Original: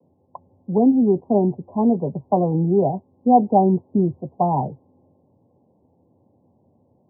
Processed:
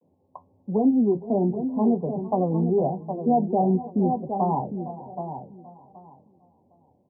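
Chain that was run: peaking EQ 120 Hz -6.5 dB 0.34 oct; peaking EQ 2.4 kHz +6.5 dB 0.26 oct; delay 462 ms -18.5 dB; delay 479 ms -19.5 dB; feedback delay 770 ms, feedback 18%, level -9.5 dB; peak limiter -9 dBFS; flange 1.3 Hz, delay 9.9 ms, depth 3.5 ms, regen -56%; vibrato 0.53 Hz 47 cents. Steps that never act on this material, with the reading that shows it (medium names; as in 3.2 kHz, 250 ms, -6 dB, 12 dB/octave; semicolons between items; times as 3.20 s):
peaking EQ 2.4 kHz: input has nothing above 1.1 kHz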